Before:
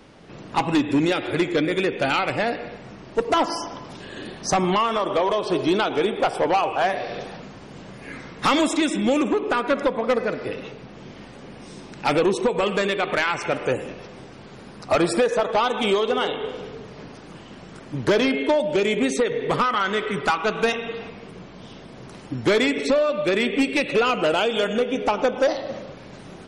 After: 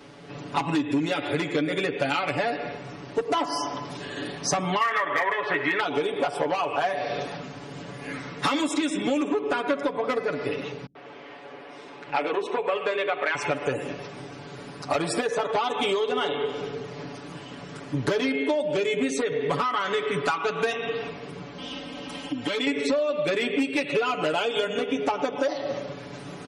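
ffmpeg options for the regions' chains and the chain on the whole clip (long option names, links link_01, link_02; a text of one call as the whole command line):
ffmpeg -i in.wav -filter_complex "[0:a]asettb=1/sr,asplit=3[link_01][link_02][link_03];[link_01]atrim=end=4.814[link_04];[link_02]atrim=start=4.81:end=5.8,asetpts=PTS-STARTPTS,afade=type=in:duration=0.004:curve=qsin,afade=type=out:start_time=0.986:duration=0.004:curve=qsin,lowpass=frequency=1900:width_type=q:width=11,tiltshelf=frequency=710:gain=-6,asoftclip=type=hard:threshold=-8.5dB[link_05];[link_03]atrim=start=5.796[link_06];[link_04][link_05]acrossfade=duration=0.004:curve1=hsin:curve2=qsin[link_07];[link_07][link_06]acrossfade=duration=0.004:curve1=qsin:curve2=hsin,asettb=1/sr,asplit=3[link_08][link_09][link_10];[link_08]atrim=end=10.864[link_11];[link_09]atrim=start=10.86:end=13.35,asetpts=PTS-STARTPTS,afade=type=in:duration=0.004:curve=qsin,afade=type=out:start_time=2.486:duration=0.004:curve=qsin,acrossover=split=320 3500:gain=0.158 1 0.141[link_12][link_13][link_14];[link_12][link_13][link_14]amix=inputs=3:normalize=0,acrossover=split=180[link_15][link_16];[link_16]adelay=90[link_17];[link_15][link_17]amix=inputs=2:normalize=0,atrim=end_sample=109809[link_18];[link_10]atrim=start=13.346[link_19];[link_11][link_18]acrossfade=duration=0.004:curve1=hsin:curve2=qsin[link_20];[link_20][link_19]acrossfade=duration=0.004:curve1=qsin:curve2=hsin,asettb=1/sr,asplit=3[link_21][link_22][link_23];[link_21]atrim=end=21.584[link_24];[link_22]atrim=start=21.58:end=22.67,asetpts=PTS-STARTPTS,afade=type=in:duration=0.004:curve=qsin,afade=type=out:start_time=1.086:duration=0.004:curve=qsin,equalizer=frequency=3000:width_type=o:width=0.4:gain=11,aecho=1:1:3.8:0.82,atrim=end_sample=48069,acompressor=threshold=-31dB:ratio=2.5:attack=3.2:release=140:knee=1:detection=peak[link_25];[link_23]atrim=start=22.666[link_26];[link_24][link_25]acrossfade=duration=0.004:curve1=hsin:curve2=qsin[link_27];[link_27][link_26]acrossfade=duration=0.004:curve1=qsin:curve2=hsin,highpass=frequency=110:poles=1,aecho=1:1:7:0.92,acompressor=threshold=-23dB:ratio=4" out.wav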